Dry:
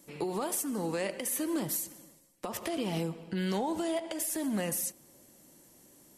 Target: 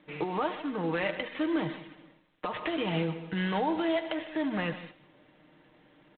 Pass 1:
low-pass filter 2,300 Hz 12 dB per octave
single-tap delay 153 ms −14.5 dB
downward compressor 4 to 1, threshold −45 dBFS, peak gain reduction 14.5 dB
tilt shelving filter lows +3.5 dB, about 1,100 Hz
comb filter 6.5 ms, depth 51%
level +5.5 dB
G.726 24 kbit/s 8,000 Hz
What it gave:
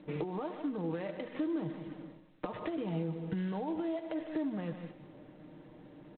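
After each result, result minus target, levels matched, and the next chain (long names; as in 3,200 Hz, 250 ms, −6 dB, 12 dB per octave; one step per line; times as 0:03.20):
downward compressor: peak gain reduction +14.5 dB; 1,000 Hz band −4.5 dB
low-pass filter 2,300 Hz 12 dB per octave
tilt shelving filter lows +3.5 dB, about 1,100 Hz
comb filter 6.5 ms, depth 51%
single-tap delay 153 ms −14.5 dB
level +5.5 dB
G.726 24 kbit/s 8,000 Hz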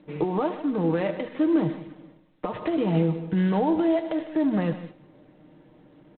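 1,000 Hz band −4.5 dB
low-pass filter 2,300 Hz 12 dB per octave
tilt shelving filter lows −6 dB, about 1,100 Hz
comb filter 6.5 ms, depth 51%
single-tap delay 153 ms −14.5 dB
level +5.5 dB
G.726 24 kbit/s 8,000 Hz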